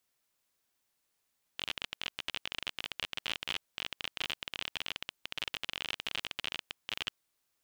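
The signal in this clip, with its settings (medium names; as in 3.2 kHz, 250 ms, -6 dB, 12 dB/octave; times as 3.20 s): random clicks 32 per s -18 dBFS 5.54 s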